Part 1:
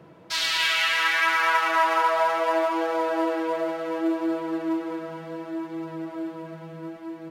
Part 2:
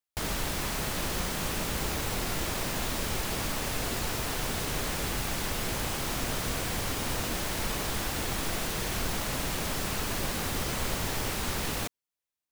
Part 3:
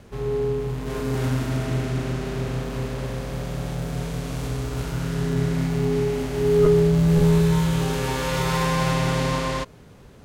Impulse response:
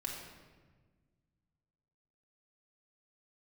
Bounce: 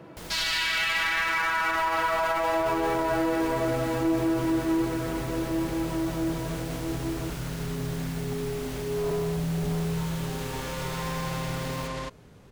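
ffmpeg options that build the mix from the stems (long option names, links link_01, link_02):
-filter_complex "[0:a]volume=0.5dB,asplit=2[link_01][link_02];[link_02]volume=-4dB[link_03];[1:a]volume=-10dB[link_04];[2:a]adelay=2450,volume=-4.5dB[link_05];[link_01][link_05]amix=inputs=2:normalize=0,asoftclip=type=hard:threshold=-20dB,alimiter=level_in=1dB:limit=-24dB:level=0:latency=1,volume=-1dB,volume=0dB[link_06];[3:a]atrim=start_sample=2205[link_07];[link_03][link_07]afir=irnorm=-1:irlink=0[link_08];[link_04][link_06][link_08]amix=inputs=3:normalize=0,alimiter=limit=-18.5dB:level=0:latency=1:release=13"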